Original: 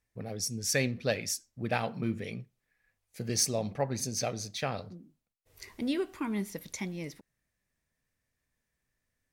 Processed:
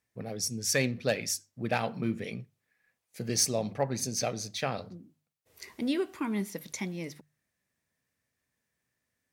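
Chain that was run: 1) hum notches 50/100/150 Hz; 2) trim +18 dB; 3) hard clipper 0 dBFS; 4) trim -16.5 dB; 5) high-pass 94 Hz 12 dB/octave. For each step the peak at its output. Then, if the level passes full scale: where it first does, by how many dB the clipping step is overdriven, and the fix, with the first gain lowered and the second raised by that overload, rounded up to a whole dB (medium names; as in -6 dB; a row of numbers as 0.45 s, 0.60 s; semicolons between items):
-14.0 dBFS, +4.0 dBFS, 0.0 dBFS, -16.5 dBFS, -14.5 dBFS; step 2, 4.0 dB; step 2 +14 dB, step 4 -12.5 dB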